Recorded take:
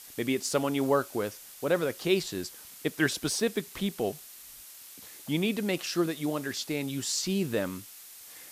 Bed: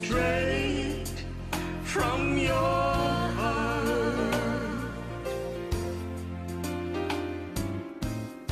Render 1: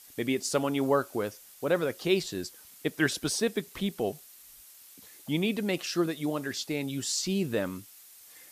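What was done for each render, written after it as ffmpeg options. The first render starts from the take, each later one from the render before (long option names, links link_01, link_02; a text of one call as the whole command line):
ffmpeg -i in.wav -af "afftdn=noise_reduction=6:noise_floor=-49" out.wav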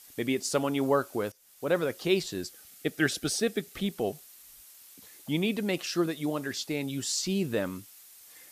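ffmpeg -i in.wav -filter_complex "[0:a]asettb=1/sr,asplit=3[link_01][link_02][link_03];[link_01]atrim=end=2.464[link_04];[link_02]atrim=start=2.46:end=3.85,asetpts=PTS-STARTPTS,afade=type=in:duration=0.004:curve=qsin,afade=type=out:start_time=1.386:duration=0.004:curve=qsin,asuperstop=centerf=1000:order=12:qfactor=4.3[link_05];[link_03]atrim=start=3.846[link_06];[link_04][link_05]acrossfade=duration=0.004:curve1=hsin:curve2=qsin[link_07];[link_07][link_06]acrossfade=duration=0.004:curve1=qsin:curve2=hsin,asplit=2[link_08][link_09];[link_08]atrim=end=1.32,asetpts=PTS-STARTPTS,afade=type=out:start_time=1.316:duration=0.004:curve=hsin:silence=0.112202[link_10];[link_09]atrim=start=1.32,asetpts=PTS-STARTPTS,afade=type=in:duration=0.41:silence=0.112202[link_11];[link_10][link_11]concat=n=2:v=0:a=1" out.wav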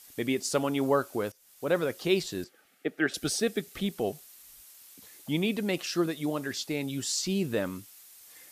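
ffmpeg -i in.wav -filter_complex "[0:a]asettb=1/sr,asplit=3[link_01][link_02][link_03];[link_01]atrim=end=2.444[link_04];[link_02]atrim=start=2.44:end=3.14,asetpts=PTS-STARTPTS,afade=type=in:duration=0.004:curve=qsin,afade=type=out:start_time=0.696:duration=0.004:curve=qsin,acrossover=split=190 2700:gain=0.126 1 0.141[link_05][link_06][link_07];[link_05][link_06][link_07]amix=inputs=3:normalize=0[link_08];[link_03]atrim=start=3.136[link_09];[link_04][link_08]acrossfade=duration=0.004:curve1=hsin:curve2=qsin[link_10];[link_10][link_09]acrossfade=duration=0.004:curve1=qsin:curve2=hsin" out.wav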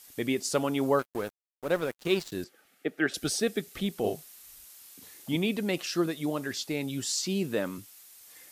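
ffmpeg -i in.wav -filter_complex "[0:a]asettb=1/sr,asplit=3[link_01][link_02][link_03];[link_01]atrim=end=0.994[link_04];[link_02]atrim=start=0.99:end=2.32,asetpts=PTS-STARTPTS,afade=type=in:duration=0.004:curve=qsin,afade=type=out:start_time=1.326:duration=0.004:curve=qsin,aeval=exprs='sgn(val(0))*max(abs(val(0))-0.0106,0)':channel_layout=same[link_05];[link_03]atrim=start=2.316[link_06];[link_04][link_05]acrossfade=duration=0.004:curve1=hsin:curve2=qsin[link_07];[link_07][link_06]acrossfade=duration=0.004:curve1=qsin:curve2=hsin,asettb=1/sr,asplit=3[link_08][link_09][link_10];[link_08]atrim=end=4.004[link_11];[link_09]atrim=start=4:end=5.36,asetpts=PTS-STARTPTS,afade=type=in:duration=0.004:curve=qsin,afade=type=out:start_time=1.356:duration=0.004:curve=qsin,asplit=2[link_12][link_13];[link_13]adelay=38,volume=-4dB[link_14];[link_12][link_14]amix=inputs=2:normalize=0,atrim=end_sample=59976[link_15];[link_10]atrim=start=5.356[link_16];[link_11][link_15]acrossfade=duration=0.004:curve1=hsin:curve2=qsin[link_17];[link_17][link_16]acrossfade=duration=0.004:curve1=qsin:curve2=hsin,asettb=1/sr,asplit=3[link_18][link_19][link_20];[link_18]atrim=end=7.164[link_21];[link_19]atrim=start=7.16:end=7.78,asetpts=PTS-STARTPTS,afade=type=in:duration=0.004:curve=qsin,afade=type=out:start_time=0.616:duration=0.004:curve=qsin,highpass=140[link_22];[link_20]atrim=start=7.776[link_23];[link_21][link_22]acrossfade=duration=0.004:curve1=hsin:curve2=qsin[link_24];[link_24][link_23]acrossfade=duration=0.004:curve1=qsin:curve2=hsin" out.wav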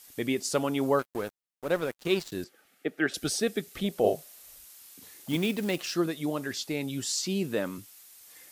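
ffmpeg -i in.wav -filter_complex "[0:a]asettb=1/sr,asplit=3[link_01][link_02][link_03];[link_01]atrim=end=3.844[link_04];[link_02]atrim=start=3.84:end=4.58,asetpts=PTS-STARTPTS,afade=type=in:duration=0.004:curve=qsin,afade=type=out:start_time=0.736:duration=0.004:curve=qsin,equalizer=frequency=580:width=2.2:gain=11[link_05];[link_03]atrim=start=4.576[link_06];[link_04][link_05]acrossfade=duration=0.004:curve1=hsin:curve2=qsin[link_07];[link_07][link_06]acrossfade=duration=0.004:curve1=qsin:curve2=hsin,asettb=1/sr,asplit=3[link_08][link_09][link_10];[link_08]atrim=end=5.284[link_11];[link_09]atrim=start=5.28:end=5.94,asetpts=PTS-STARTPTS,afade=type=in:duration=0.004:curve=qsin,afade=type=out:start_time=0.656:duration=0.004:curve=qsin,acrusher=bits=4:mode=log:mix=0:aa=0.000001[link_12];[link_10]atrim=start=5.936[link_13];[link_11][link_12]acrossfade=duration=0.004:curve1=hsin:curve2=qsin[link_14];[link_14][link_13]acrossfade=duration=0.004:curve1=qsin:curve2=hsin" out.wav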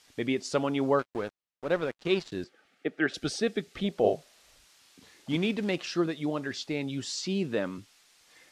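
ffmpeg -i in.wav -af "lowpass=4900" out.wav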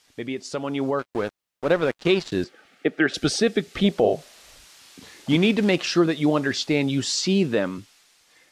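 ffmpeg -i in.wav -af "alimiter=limit=-19dB:level=0:latency=1:release=167,dynaudnorm=framelen=330:gausssize=7:maxgain=10.5dB" out.wav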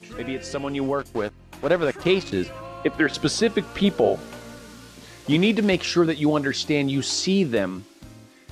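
ffmpeg -i in.wav -i bed.wav -filter_complex "[1:a]volume=-12dB[link_01];[0:a][link_01]amix=inputs=2:normalize=0" out.wav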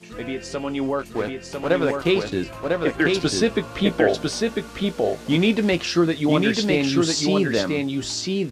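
ffmpeg -i in.wav -filter_complex "[0:a]asplit=2[link_01][link_02];[link_02]adelay=18,volume=-11.5dB[link_03];[link_01][link_03]amix=inputs=2:normalize=0,asplit=2[link_04][link_05];[link_05]aecho=0:1:999:0.708[link_06];[link_04][link_06]amix=inputs=2:normalize=0" out.wav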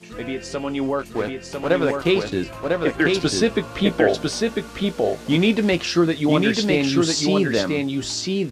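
ffmpeg -i in.wav -af "volume=1dB" out.wav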